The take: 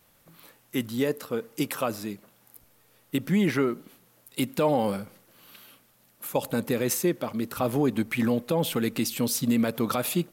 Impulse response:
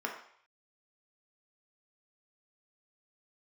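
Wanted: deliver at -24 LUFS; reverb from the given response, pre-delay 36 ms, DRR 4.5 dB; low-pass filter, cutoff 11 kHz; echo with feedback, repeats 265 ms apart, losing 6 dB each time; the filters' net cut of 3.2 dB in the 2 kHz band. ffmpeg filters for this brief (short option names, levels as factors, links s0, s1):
-filter_complex "[0:a]lowpass=11000,equalizer=f=2000:t=o:g=-4,aecho=1:1:265|530|795|1060|1325|1590:0.501|0.251|0.125|0.0626|0.0313|0.0157,asplit=2[s0][s1];[1:a]atrim=start_sample=2205,adelay=36[s2];[s1][s2]afir=irnorm=-1:irlink=0,volume=0.335[s3];[s0][s3]amix=inputs=2:normalize=0,volume=1.26"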